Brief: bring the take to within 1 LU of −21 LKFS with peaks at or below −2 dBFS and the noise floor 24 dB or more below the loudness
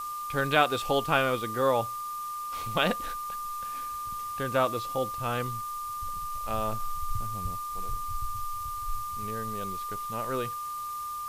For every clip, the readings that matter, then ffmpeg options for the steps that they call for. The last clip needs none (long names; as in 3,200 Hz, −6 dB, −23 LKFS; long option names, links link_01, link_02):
interfering tone 1,200 Hz; level of the tone −33 dBFS; background noise floor −36 dBFS; target noise floor −55 dBFS; integrated loudness −31.0 LKFS; sample peak −8.0 dBFS; target loudness −21.0 LKFS
→ -af "bandreject=frequency=1200:width=30"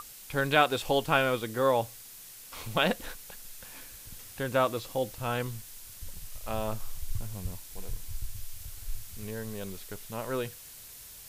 interfering tone none found; background noise floor −48 dBFS; target noise floor −55 dBFS
→ -af "afftdn=noise_reduction=7:noise_floor=-48"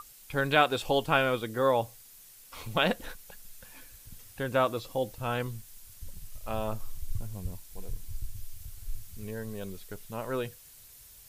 background noise floor −53 dBFS; target noise floor −55 dBFS
→ -af "afftdn=noise_reduction=6:noise_floor=-53"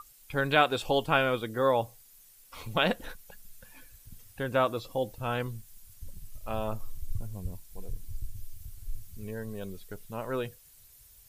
background noise floor −57 dBFS; integrated loudness −31.0 LKFS; sample peak −8.5 dBFS; target loudness −21.0 LKFS
→ -af "volume=10dB,alimiter=limit=-2dB:level=0:latency=1"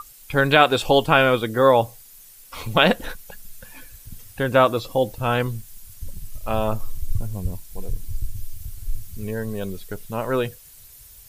integrated loudness −21.0 LKFS; sample peak −2.0 dBFS; background noise floor −47 dBFS